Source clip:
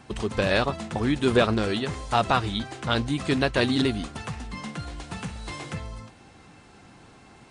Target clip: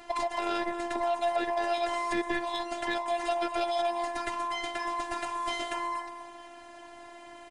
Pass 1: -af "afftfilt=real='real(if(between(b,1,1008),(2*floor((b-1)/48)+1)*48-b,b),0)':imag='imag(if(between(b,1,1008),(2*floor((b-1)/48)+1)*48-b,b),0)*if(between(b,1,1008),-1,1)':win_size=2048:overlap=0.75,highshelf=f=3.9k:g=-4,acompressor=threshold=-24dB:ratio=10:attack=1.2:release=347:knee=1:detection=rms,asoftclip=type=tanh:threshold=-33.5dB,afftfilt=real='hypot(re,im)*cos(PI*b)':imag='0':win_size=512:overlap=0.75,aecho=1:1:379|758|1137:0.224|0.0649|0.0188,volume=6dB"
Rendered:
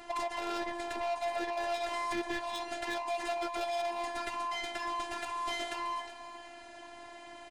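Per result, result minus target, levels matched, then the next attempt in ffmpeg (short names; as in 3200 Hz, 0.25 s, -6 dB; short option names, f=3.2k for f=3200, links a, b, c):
echo 0.144 s late; soft clip: distortion +13 dB
-af "afftfilt=real='real(if(between(b,1,1008),(2*floor((b-1)/48)+1)*48-b,b),0)':imag='imag(if(between(b,1,1008),(2*floor((b-1)/48)+1)*48-b,b),0)*if(between(b,1,1008),-1,1)':win_size=2048:overlap=0.75,highshelf=f=3.9k:g=-4,acompressor=threshold=-24dB:ratio=10:attack=1.2:release=347:knee=1:detection=rms,asoftclip=type=tanh:threshold=-33.5dB,afftfilt=real='hypot(re,im)*cos(PI*b)':imag='0':win_size=512:overlap=0.75,aecho=1:1:235|470|705:0.224|0.0649|0.0188,volume=6dB"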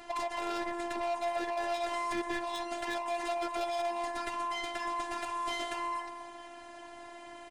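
soft clip: distortion +13 dB
-af "afftfilt=real='real(if(between(b,1,1008),(2*floor((b-1)/48)+1)*48-b,b),0)':imag='imag(if(between(b,1,1008),(2*floor((b-1)/48)+1)*48-b,b),0)*if(between(b,1,1008),-1,1)':win_size=2048:overlap=0.75,highshelf=f=3.9k:g=-4,acompressor=threshold=-24dB:ratio=10:attack=1.2:release=347:knee=1:detection=rms,asoftclip=type=tanh:threshold=-22.5dB,afftfilt=real='hypot(re,im)*cos(PI*b)':imag='0':win_size=512:overlap=0.75,aecho=1:1:235|470|705:0.224|0.0649|0.0188,volume=6dB"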